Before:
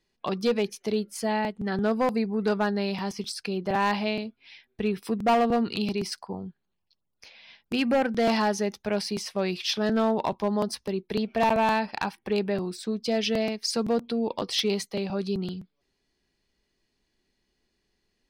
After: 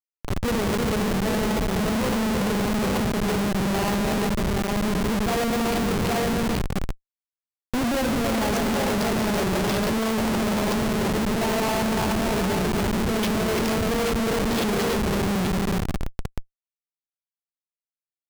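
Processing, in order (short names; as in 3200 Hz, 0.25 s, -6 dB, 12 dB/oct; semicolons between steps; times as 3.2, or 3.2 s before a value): 2.84–3.53 steep low-pass 8700 Hz 36 dB/oct; Schroeder reverb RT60 1.6 s, combs from 32 ms, DRR 7 dB; transient shaper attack -2 dB, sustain +12 dB; on a send: tapped delay 0.135/0.333/0.641/0.829 s -15/-4/-15.5/-3.5 dB; on the sum: Schmitt trigger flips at -22 dBFS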